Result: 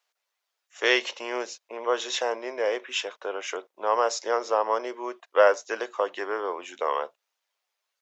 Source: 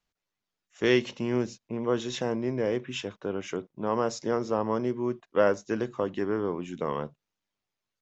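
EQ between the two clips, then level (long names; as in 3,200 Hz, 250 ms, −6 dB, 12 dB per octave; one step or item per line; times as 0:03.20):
high-pass filter 530 Hz 24 dB per octave
+7.0 dB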